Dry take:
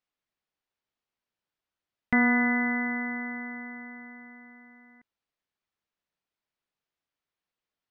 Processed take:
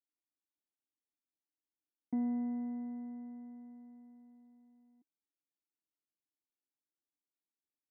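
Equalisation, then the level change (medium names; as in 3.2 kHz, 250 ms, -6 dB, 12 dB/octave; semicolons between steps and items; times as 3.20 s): cascade formant filter u; Bessel high-pass 210 Hz; peaking EQ 1.2 kHz -5 dB 0.73 oct; 0.0 dB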